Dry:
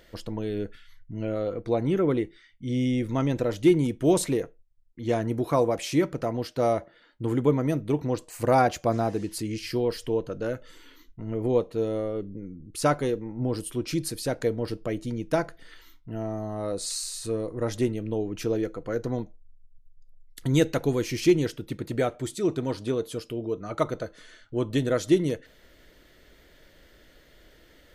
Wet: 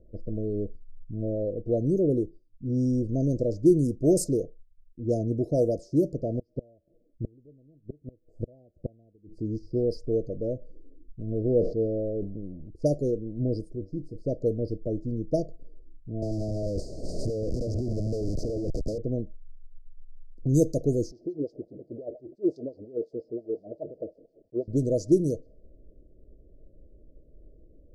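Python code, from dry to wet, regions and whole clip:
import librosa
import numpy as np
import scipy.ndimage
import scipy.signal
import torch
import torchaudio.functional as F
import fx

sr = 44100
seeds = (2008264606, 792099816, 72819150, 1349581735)

y = fx.chain(x, sr, fx.low_shelf(hz=140.0, db=2.5),
    fx.mod_noise(seeds[0], snr_db=31),
    fx.gate_flip(shuts_db=-18.0, range_db=-32), at=(6.29, 9.36))
y = fx.chain(y, sr, fx.crossing_spikes(level_db=-23.0),
    fx.lowpass(hz=2300.0, slope=24),
    fx.sustainer(db_per_s=97.0), at=(11.31, 12.69))
y = fx.chain(y, sr, fx.low_shelf(hz=420.0, db=2.5),
    fx.comb_fb(f0_hz=96.0, decay_s=0.18, harmonics='all', damping=0.0, mix_pct=80), at=(13.75, 14.16))
y = fx.chain(y, sr, fx.high_shelf(hz=12000.0, db=8.5),
    fx.schmitt(flips_db=-39.0),
    fx.band_squash(depth_pct=100), at=(16.22, 18.98))
y = fx.chain(y, sr, fx.zero_step(step_db=-32.5),
    fx.peak_eq(hz=3800.0, db=7.0, octaves=1.4),
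    fx.wah_lfo(hz=5.7, low_hz=330.0, high_hz=2300.0, q=2.1), at=(21.11, 24.68))
y = scipy.signal.sosfilt(scipy.signal.cheby1(5, 1.0, [640.0, 4800.0], 'bandstop', fs=sr, output='sos'), y)
y = fx.low_shelf(y, sr, hz=66.0, db=9.0)
y = fx.env_lowpass(y, sr, base_hz=450.0, full_db=-19.0)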